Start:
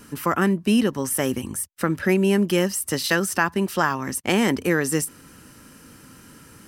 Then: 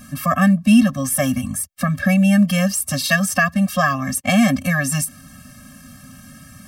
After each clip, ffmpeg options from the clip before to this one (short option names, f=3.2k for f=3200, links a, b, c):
-af "afftfilt=real='re*eq(mod(floor(b*sr/1024/260),2),0)':imag='im*eq(mod(floor(b*sr/1024/260),2),0)':win_size=1024:overlap=0.75,volume=7.5dB"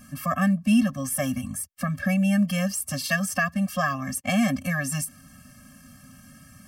-af "bandreject=f=3.8k:w=12,volume=-7.5dB"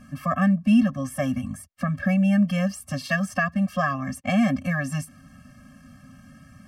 -af "aemphasis=mode=reproduction:type=75kf,volume=2dB"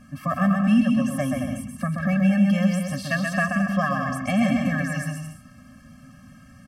-af "aecho=1:1:130|221|284.7|329.3|360.5:0.631|0.398|0.251|0.158|0.1,volume=-1dB"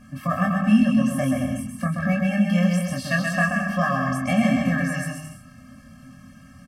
-filter_complex "[0:a]asplit=2[a][b];[b]adelay=23,volume=-3.5dB[c];[a][c]amix=inputs=2:normalize=0"